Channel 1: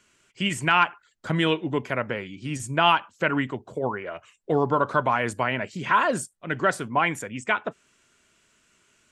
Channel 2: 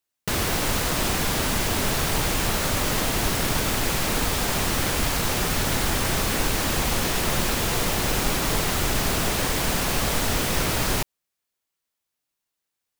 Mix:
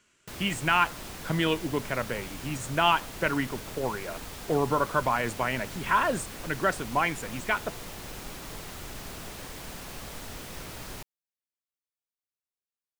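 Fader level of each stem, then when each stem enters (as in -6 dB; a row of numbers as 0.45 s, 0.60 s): -3.5 dB, -17.0 dB; 0.00 s, 0.00 s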